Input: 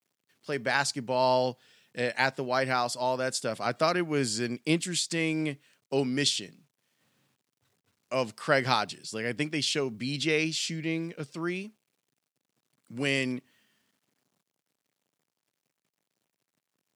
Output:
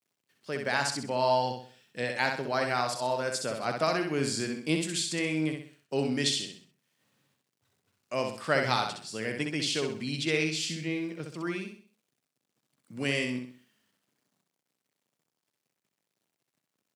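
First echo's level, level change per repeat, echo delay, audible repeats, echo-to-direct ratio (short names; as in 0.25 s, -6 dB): -5.0 dB, -8.5 dB, 64 ms, 4, -4.5 dB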